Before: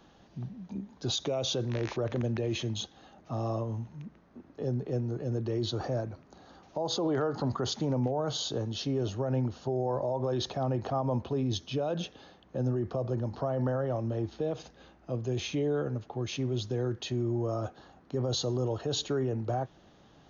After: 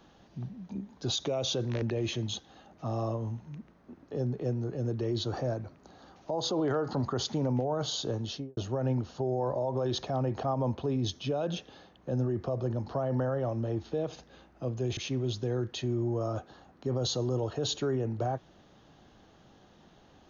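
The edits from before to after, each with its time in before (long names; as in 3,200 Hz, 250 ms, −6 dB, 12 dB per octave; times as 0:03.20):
0:01.82–0:02.29: remove
0:08.73–0:09.04: fade out and dull
0:15.44–0:16.25: remove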